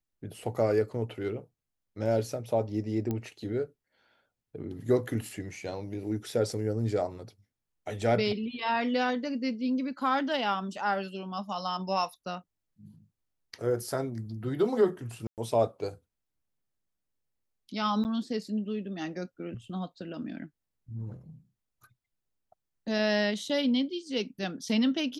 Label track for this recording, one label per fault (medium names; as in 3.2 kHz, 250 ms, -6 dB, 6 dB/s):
3.110000	3.110000	pop -20 dBFS
15.270000	15.380000	dropout 108 ms
18.040000	18.050000	dropout 9.5 ms